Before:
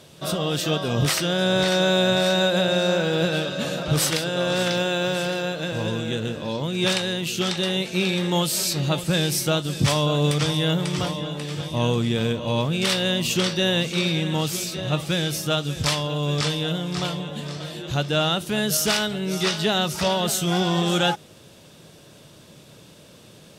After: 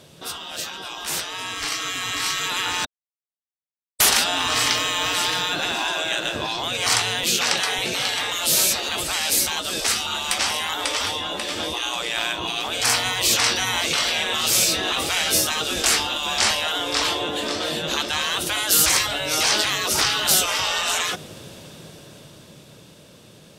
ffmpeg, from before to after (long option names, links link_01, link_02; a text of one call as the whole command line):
ffmpeg -i in.wav -filter_complex "[0:a]asettb=1/sr,asplit=3[link_01][link_02][link_03];[link_01]atrim=end=7.234[link_04];[link_02]atrim=start=7.23:end=7.79,asetpts=PTS-STARTPTS,afade=type=in:duration=0.004:curve=qsin,afade=type=out:start_time=0.556:duration=0.004:curve=qsin,highpass=190[link_05];[link_03]atrim=start=7.786[link_06];[link_04][link_05]acrossfade=duration=0.004:curve1=hsin:curve2=qsin[link_07];[link_07][link_06]acrossfade=duration=0.004:curve1=qsin:curve2=hsin,asettb=1/sr,asplit=3[link_08][link_09][link_10];[link_08]atrim=end=14.594[link_11];[link_09]atrim=start=14.59:end=16.51,asetpts=PTS-STARTPTS,afade=type=in:duration=0.004:curve=qsin,afade=type=out:start_time=1.916:duration=0.004:curve=qsin,asplit=2[link_12][link_13];[link_13]adelay=23,volume=-7.5dB[link_14];[link_12][link_14]amix=inputs=2:normalize=0,atrim=end_sample=84672[link_15];[link_10]atrim=start=16.506[link_16];[link_11][link_15]acrossfade=duration=0.004:curve1=hsin:curve2=qsin[link_17];[link_17][link_16]acrossfade=duration=0.004:curve1=qsin:curve2=hsin,asplit=3[link_18][link_19][link_20];[link_18]atrim=end=2.85,asetpts=PTS-STARTPTS,afade=type=out:start_time=2.846:duration=0.004:curve=hsin[link_21];[link_19]atrim=start=2.85:end=4,asetpts=PTS-STARTPTS,volume=0[link_22];[link_20]atrim=start=4,asetpts=PTS-STARTPTS,afade=type=in:duration=0.004:curve=hsin[link_23];[link_21][link_22][link_23]concat=n=3:v=0:a=1,afftfilt=real='re*lt(hypot(re,im),0.1)':imag='im*lt(hypot(re,im),0.1)':win_size=1024:overlap=0.75,dynaudnorm=framelen=140:gausssize=31:maxgain=12.5dB" out.wav